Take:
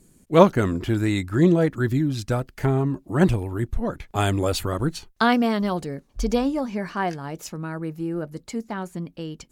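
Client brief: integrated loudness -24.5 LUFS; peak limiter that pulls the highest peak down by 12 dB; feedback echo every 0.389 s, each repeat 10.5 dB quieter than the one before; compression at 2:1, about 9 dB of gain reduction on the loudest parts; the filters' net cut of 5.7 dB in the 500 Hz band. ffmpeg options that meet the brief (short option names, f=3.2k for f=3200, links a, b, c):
-af "equalizer=f=500:t=o:g=-7.5,acompressor=threshold=-29dB:ratio=2,alimiter=level_in=0.5dB:limit=-24dB:level=0:latency=1,volume=-0.5dB,aecho=1:1:389|778|1167:0.299|0.0896|0.0269,volume=9.5dB"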